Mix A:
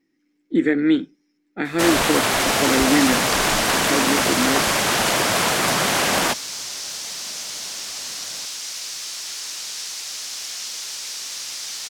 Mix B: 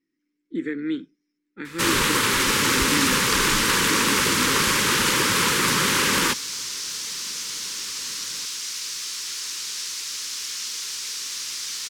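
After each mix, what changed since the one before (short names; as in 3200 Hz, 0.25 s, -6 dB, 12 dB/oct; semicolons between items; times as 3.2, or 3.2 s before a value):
speech -9.5 dB; master: add Butterworth band-stop 690 Hz, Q 1.5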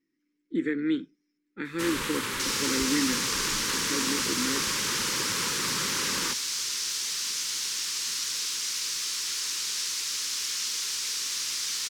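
first sound -11.0 dB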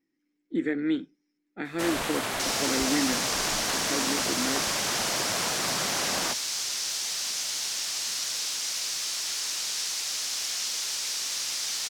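master: remove Butterworth band-stop 690 Hz, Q 1.5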